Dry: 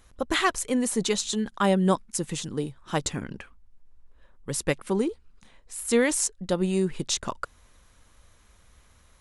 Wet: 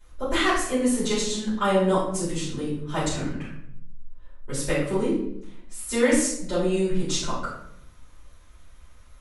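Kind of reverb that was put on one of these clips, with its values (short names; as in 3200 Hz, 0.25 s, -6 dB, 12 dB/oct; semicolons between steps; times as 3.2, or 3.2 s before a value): shoebox room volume 150 m³, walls mixed, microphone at 4.8 m; gain -12.5 dB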